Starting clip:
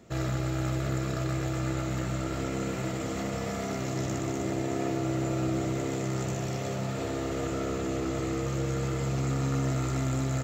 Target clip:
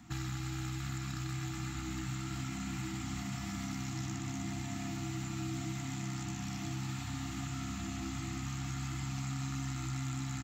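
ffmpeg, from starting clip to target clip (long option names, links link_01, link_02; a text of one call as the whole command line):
ffmpeg -i in.wav -filter_complex "[0:a]asplit=2[link_01][link_02];[link_02]adelay=1224,volume=-8dB,highshelf=frequency=4000:gain=-27.6[link_03];[link_01][link_03]amix=inputs=2:normalize=0,afftfilt=real='re*(1-between(b*sr/4096,330,690))':imag='im*(1-between(b*sr/4096,330,690))':win_size=4096:overlap=0.75,acrossover=split=380|2200|6100[link_04][link_05][link_06][link_07];[link_04]acompressor=threshold=-39dB:ratio=4[link_08];[link_05]acompressor=threshold=-52dB:ratio=4[link_09];[link_06]acompressor=threshold=-50dB:ratio=4[link_10];[link_07]acompressor=threshold=-55dB:ratio=4[link_11];[link_08][link_09][link_10][link_11]amix=inputs=4:normalize=0,volume=1dB" out.wav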